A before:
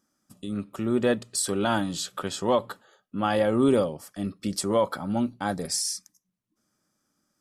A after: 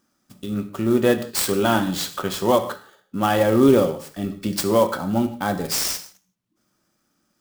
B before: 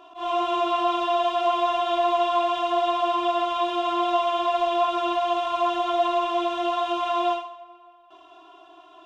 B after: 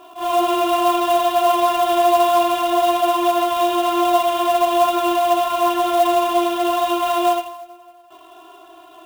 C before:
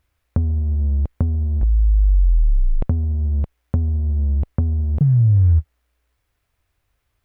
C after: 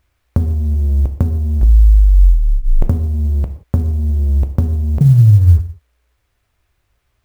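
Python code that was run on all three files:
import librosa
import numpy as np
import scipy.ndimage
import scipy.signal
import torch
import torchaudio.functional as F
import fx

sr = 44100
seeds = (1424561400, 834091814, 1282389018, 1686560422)

y = fx.rev_gated(x, sr, seeds[0], gate_ms=200, shape='falling', drr_db=7.5)
y = fx.clock_jitter(y, sr, seeds[1], jitter_ms=0.021)
y = F.gain(torch.from_numpy(y), 5.0).numpy()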